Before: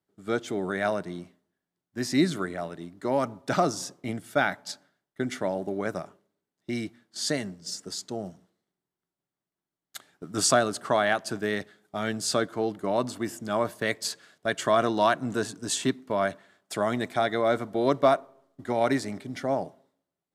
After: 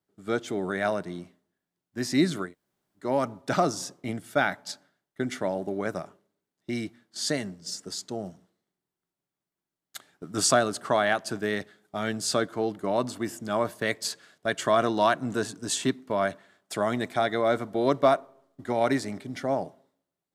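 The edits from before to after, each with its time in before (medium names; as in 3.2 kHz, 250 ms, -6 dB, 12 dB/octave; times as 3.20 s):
2.47–3.02 s: room tone, crossfade 0.16 s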